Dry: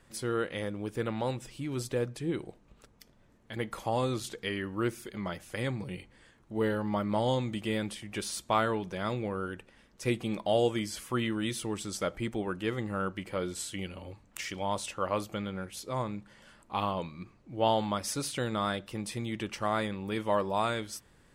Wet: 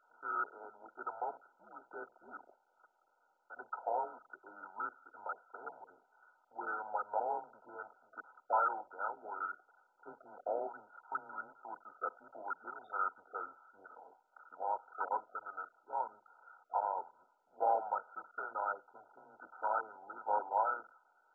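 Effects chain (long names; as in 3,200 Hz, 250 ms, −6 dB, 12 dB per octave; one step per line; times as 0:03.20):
sub-octave generator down 1 octave, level +1 dB
high-pass filter 920 Hz 24 dB per octave
frequency shifter −92 Hz
level +3 dB
MP2 8 kbit/s 16,000 Hz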